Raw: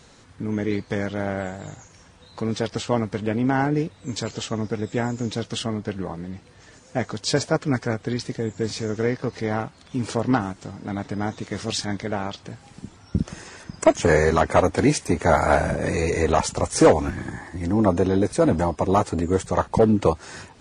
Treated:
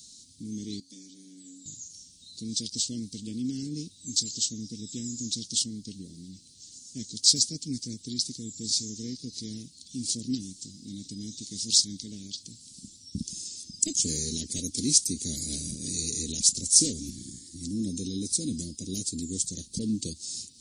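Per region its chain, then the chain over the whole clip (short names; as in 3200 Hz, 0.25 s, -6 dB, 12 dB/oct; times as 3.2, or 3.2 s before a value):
0.8–1.66 frequency shift +87 Hz + high shelf 6400 Hz +5.5 dB + resonator 92 Hz, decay 0.52 s, harmonics odd, mix 80%
whole clip: Chebyshev band-stop 250–4100 Hz, order 3; tone controls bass -14 dB, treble +11 dB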